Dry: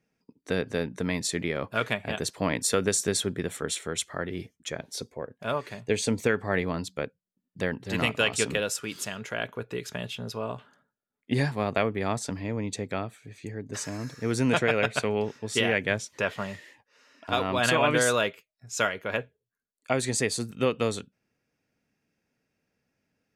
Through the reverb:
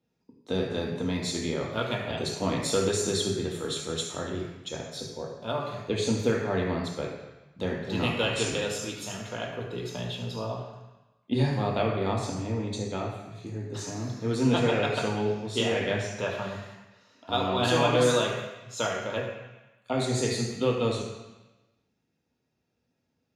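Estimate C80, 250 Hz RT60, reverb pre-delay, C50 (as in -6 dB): 5.0 dB, 1.1 s, 3 ms, 3.0 dB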